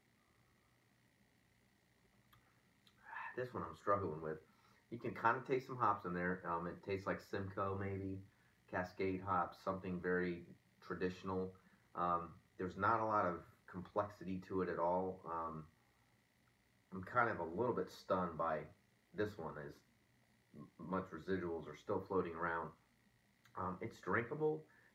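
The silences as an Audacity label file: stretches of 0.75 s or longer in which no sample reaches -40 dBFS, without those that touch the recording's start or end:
15.590000	16.960000	silence
19.650000	20.910000	silence
22.670000	23.570000	silence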